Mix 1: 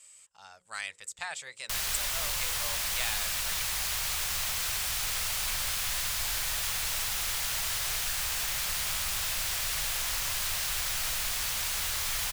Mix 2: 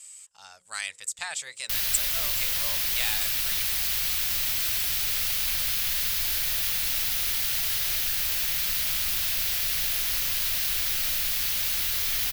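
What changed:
background: add graphic EQ 250/1000/8000 Hz +5/-7/-11 dB; master: add treble shelf 3.1 kHz +10 dB

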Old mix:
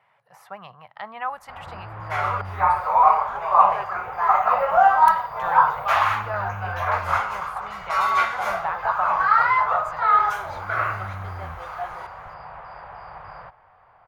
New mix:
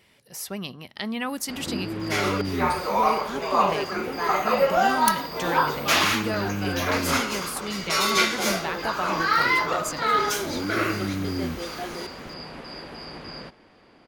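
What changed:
speech: remove high-pass 140 Hz 24 dB/octave; second sound: add treble shelf 4.3 kHz -9 dB; master: remove FFT filter 120 Hz 0 dB, 280 Hz -28 dB, 760 Hz +7 dB, 1.2 kHz +6 dB, 5.2 kHz -24 dB

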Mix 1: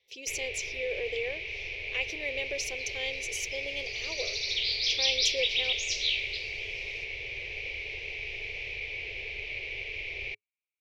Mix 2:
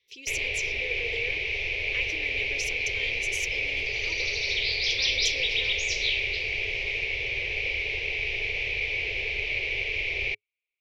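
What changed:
speech: add Butterworth band-stop 670 Hz, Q 1.2; first sound +8.0 dB; second sound: add low-pass 9.2 kHz 24 dB/octave

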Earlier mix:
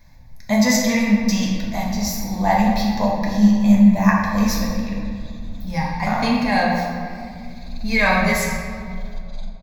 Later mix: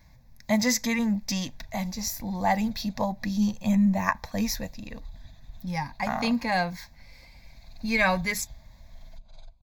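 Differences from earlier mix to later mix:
background -10.0 dB; reverb: off

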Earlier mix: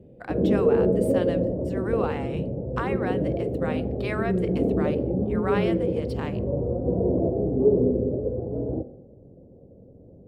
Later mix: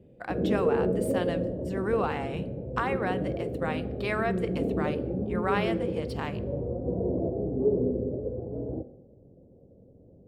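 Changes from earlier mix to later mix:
speech: send +11.5 dB; background -5.5 dB

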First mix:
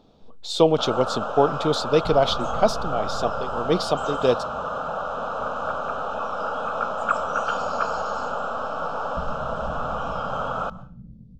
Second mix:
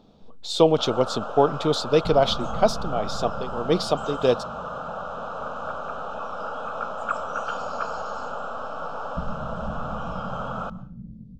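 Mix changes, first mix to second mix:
first sound: add peaking EQ 220 Hz +5.5 dB 1 oct; second sound -4.5 dB

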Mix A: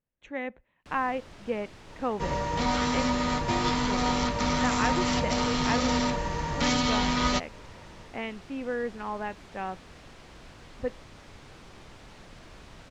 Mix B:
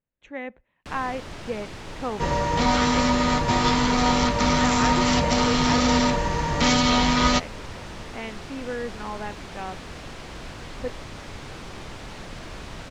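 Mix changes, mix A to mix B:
first sound +11.0 dB; second sound +6.0 dB

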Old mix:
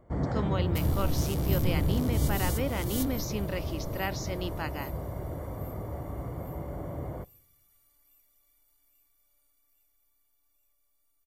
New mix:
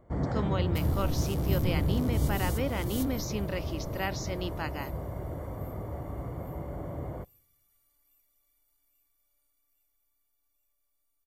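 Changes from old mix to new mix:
first sound: send -6.0 dB; second sound -4.5 dB

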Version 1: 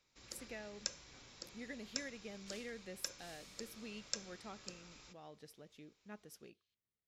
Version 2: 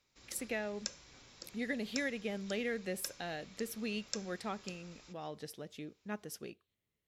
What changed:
speech +11.0 dB; second sound: add elliptic low-pass 4 kHz

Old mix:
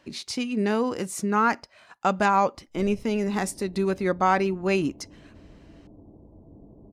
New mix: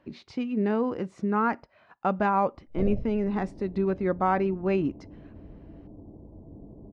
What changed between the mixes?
first sound +12.0 dB; second sound +4.0 dB; master: add tape spacing loss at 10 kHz 38 dB

